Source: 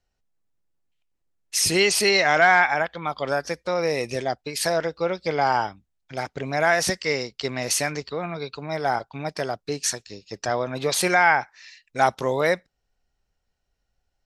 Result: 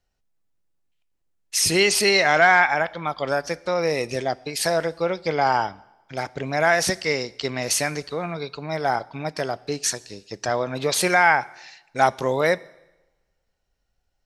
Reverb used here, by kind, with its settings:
coupled-rooms reverb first 0.96 s, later 2.5 s, from −28 dB, DRR 19.5 dB
level +1 dB

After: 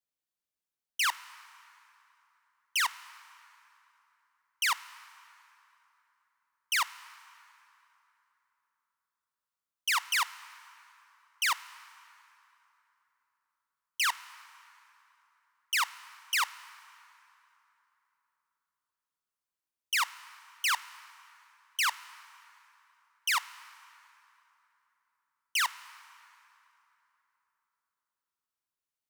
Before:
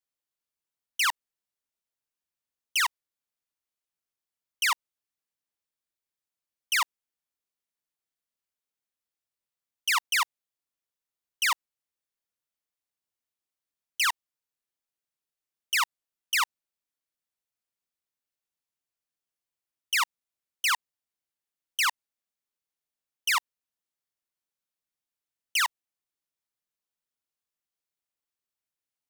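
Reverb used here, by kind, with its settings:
dense smooth reverb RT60 3.4 s, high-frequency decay 0.65×, DRR 15.5 dB
level −3 dB

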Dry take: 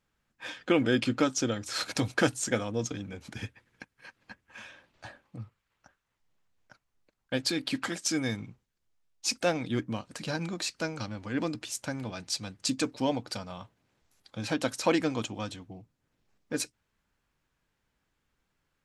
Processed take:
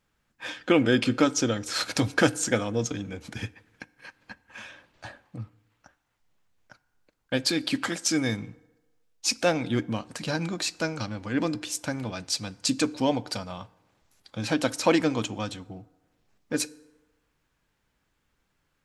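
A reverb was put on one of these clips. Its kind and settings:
feedback delay network reverb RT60 1.2 s, low-frequency decay 0.75×, high-frequency decay 0.55×, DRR 19 dB
level +4 dB

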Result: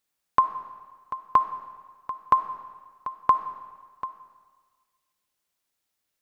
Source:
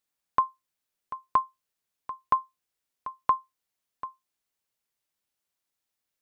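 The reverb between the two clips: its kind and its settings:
comb and all-pass reverb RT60 1.5 s, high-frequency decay 0.95×, pre-delay 15 ms, DRR 10.5 dB
level +4 dB

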